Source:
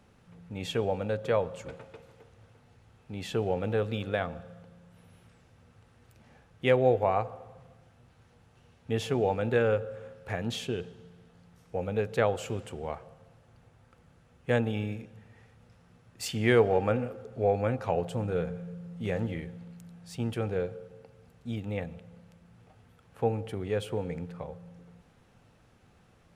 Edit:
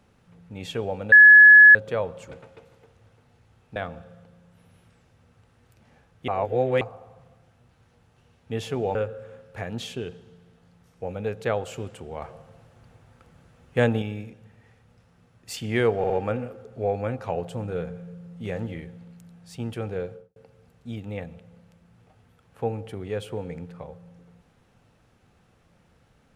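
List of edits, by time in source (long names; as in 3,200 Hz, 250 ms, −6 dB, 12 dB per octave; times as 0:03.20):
0:01.12: insert tone 1,700 Hz −6.5 dBFS 0.63 s
0:03.13–0:04.15: remove
0:06.67–0:07.20: reverse
0:09.34–0:09.67: remove
0:12.94–0:14.74: clip gain +5.5 dB
0:16.70: stutter 0.06 s, 3 plays
0:20.71–0:20.96: fade out and dull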